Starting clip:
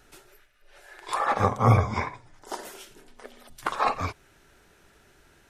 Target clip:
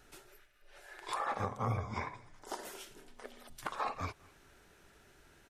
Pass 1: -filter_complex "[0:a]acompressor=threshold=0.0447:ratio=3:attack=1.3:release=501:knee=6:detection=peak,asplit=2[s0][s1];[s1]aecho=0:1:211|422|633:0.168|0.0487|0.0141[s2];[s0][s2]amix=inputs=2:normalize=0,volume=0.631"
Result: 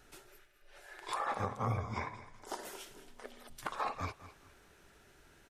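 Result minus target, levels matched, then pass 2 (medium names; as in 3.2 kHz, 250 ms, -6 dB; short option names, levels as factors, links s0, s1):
echo-to-direct +9.5 dB
-filter_complex "[0:a]acompressor=threshold=0.0447:ratio=3:attack=1.3:release=501:knee=6:detection=peak,asplit=2[s0][s1];[s1]aecho=0:1:211|422:0.0562|0.0163[s2];[s0][s2]amix=inputs=2:normalize=0,volume=0.631"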